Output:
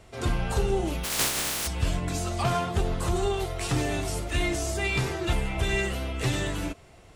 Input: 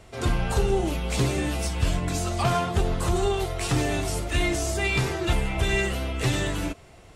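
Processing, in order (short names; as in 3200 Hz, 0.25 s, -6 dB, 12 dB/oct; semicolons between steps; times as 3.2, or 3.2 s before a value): 1.03–1.66 spectral contrast lowered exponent 0.15; 2.44–3.84 crackle 290/s -52 dBFS; gain -2.5 dB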